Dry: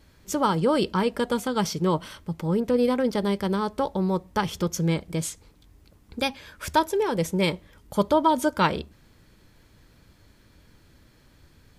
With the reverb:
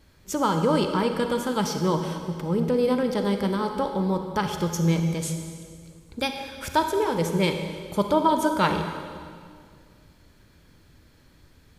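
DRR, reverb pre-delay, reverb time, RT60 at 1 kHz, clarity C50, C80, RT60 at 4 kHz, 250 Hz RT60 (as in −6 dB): 5.0 dB, 32 ms, 2.1 s, 2.0 s, 6.0 dB, 7.0 dB, 1.9 s, 2.4 s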